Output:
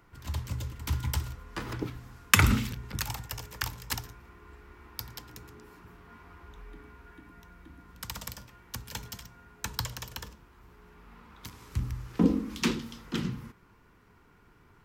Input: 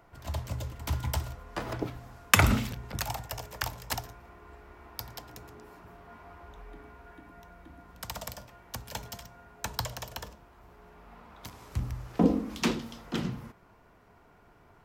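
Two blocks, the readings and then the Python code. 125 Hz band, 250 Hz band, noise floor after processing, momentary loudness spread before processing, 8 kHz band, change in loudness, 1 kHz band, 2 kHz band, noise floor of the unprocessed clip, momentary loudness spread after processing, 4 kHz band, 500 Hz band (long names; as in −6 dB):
+1.0 dB, +0.5 dB, −60 dBFS, 25 LU, +1.0 dB, 0.0 dB, −2.5 dB, +0.5 dB, −60 dBFS, 24 LU, +1.0 dB, −4.0 dB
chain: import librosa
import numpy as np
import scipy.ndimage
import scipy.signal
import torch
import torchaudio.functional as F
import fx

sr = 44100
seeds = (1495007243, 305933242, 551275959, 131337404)

y = fx.peak_eq(x, sr, hz=660.0, db=-14.5, octaves=0.61)
y = F.gain(torch.from_numpy(y), 1.0).numpy()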